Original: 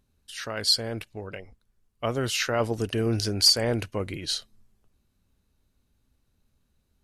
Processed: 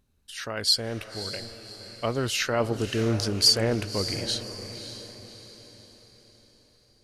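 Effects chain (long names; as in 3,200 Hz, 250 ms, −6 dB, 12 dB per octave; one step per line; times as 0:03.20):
feedback delay with all-pass diffusion 585 ms, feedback 44%, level −11 dB
highs frequency-modulated by the lows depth 0.11 ms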